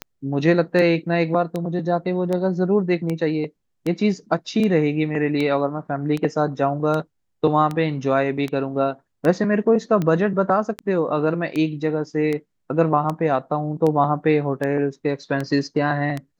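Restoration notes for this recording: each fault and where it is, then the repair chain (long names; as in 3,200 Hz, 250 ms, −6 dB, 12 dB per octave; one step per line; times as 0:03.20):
scratch tick 78 rpm −13 dBFS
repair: click removal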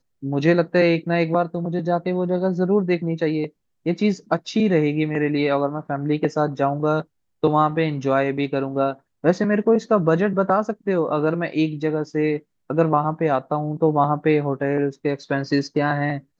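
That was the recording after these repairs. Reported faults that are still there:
none of them is left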